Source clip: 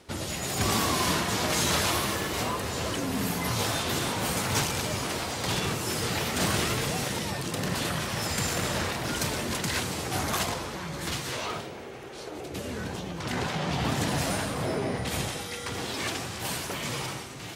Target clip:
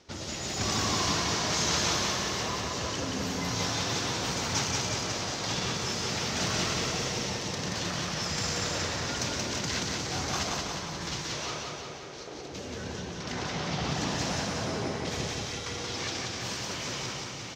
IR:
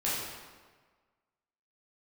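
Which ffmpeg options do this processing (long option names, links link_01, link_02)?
-af "highshelf=frequency=7900:width_type=q:width=3:gain=-11,aecho=1:1:179|358|537|716|895|1074|1253|1432|1611:0.708|0.425|0.255|0.153|0.0917|0.055|0.033|0.0198|0.0119,volume=-5.5dB"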